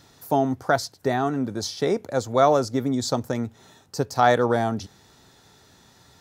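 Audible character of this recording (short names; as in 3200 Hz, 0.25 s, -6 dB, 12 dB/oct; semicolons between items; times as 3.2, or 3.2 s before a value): noise floor -56 dBFS; spectral tilt -5.5 dB/oct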